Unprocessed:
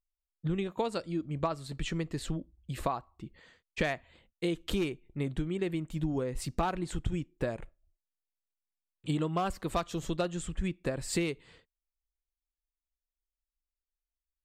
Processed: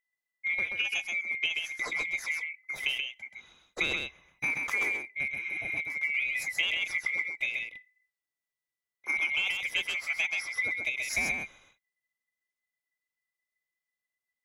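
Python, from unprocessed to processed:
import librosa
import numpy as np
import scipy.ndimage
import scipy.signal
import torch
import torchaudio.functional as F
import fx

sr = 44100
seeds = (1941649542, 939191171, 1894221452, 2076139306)

y = fx.band_swap(x, sr, width_hz=2000)
y = y + 10.0 ** (-4.0 / 20.0) * np.pad(y, (int(130 * sr / 1000.0), 0))[:len(y)]
y = fx.spec_repair(y, sr, seeds[0], start_s=5.38, length_s=0.36, low_hz=880.0, high_hz=9600.0, source='before')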